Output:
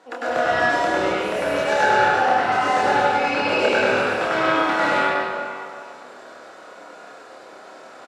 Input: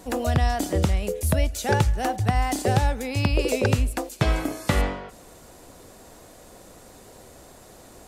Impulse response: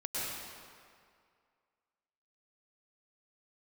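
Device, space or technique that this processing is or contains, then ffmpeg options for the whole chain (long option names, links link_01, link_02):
station announcement: -filter_complex "[0:a]highpass=460,lowpass=3700,equalizer=frequency=1400:width_type=o:width=0.36:gain=8,aecho=1:1:99.13|142.9:0.891|0.282[link_01];[1:a]atrim=start_sample=2205[link_02];[link_01][link_02]afir=irnorm=-1:irlink=0,asplit=2[link_03][link_04];[link_04]adelay=28,volume=-3.5dB[link_05];[link_03][link_05]amix=inputs=2:normalize=0"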